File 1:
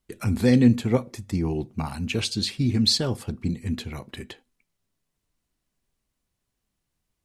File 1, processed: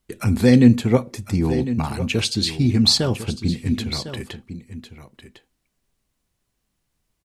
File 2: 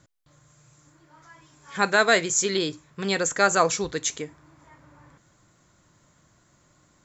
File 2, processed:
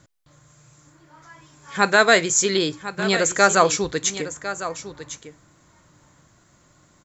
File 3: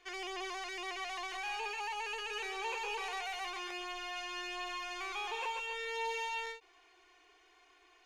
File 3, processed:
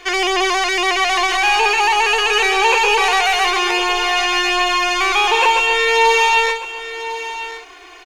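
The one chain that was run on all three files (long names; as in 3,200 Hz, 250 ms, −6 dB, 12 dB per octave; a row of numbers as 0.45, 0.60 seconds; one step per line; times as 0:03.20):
single-tap delay 1,053 ms −12.5 dB
normalise the peak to −1.5 dBFS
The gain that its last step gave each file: +5.0, +4.0, +24.5 decibels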